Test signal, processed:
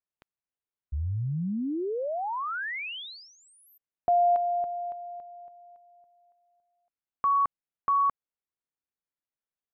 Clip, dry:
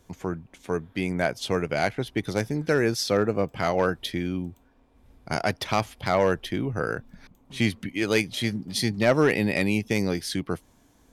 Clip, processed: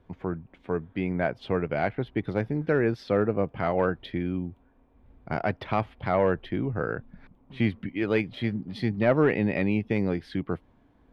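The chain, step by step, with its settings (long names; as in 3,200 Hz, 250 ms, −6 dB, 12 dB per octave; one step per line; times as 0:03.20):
high-frequency loss of the air 460 metres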